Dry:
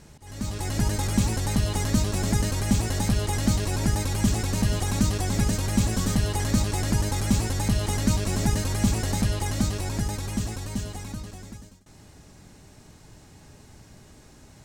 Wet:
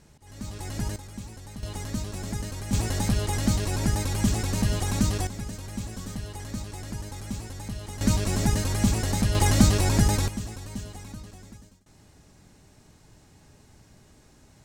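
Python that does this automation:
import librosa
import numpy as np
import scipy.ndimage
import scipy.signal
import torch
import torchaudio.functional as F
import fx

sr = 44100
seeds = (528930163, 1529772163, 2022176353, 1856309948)

y = fx.gain(x, sr, db=fx.steps((0.0, -6.0), (0.96, -16.5), (1.63, -8.5), (2.73, -1.0), (5.27, -11.5), (8.01, 0.0), (9.35, 7.0), (10.28, -5.0)))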